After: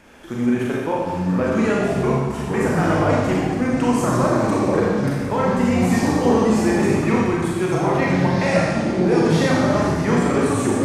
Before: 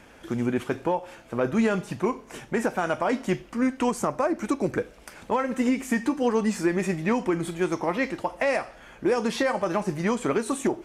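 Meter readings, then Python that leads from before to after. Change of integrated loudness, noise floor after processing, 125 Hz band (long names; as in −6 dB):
+7.5 dB, −26 dBFS, +14.0 dB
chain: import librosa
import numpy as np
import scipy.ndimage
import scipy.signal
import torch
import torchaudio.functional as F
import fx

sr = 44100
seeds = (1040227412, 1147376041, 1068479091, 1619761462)

y = fx.rev_schroeder(x, sr, rt60_s=1.4, comb_ms=29, drr_db=-4.0)
y = fx.echo_pitch(y, sr, ms=649, semitones=-5, count=3, db_per_echo=-3.0)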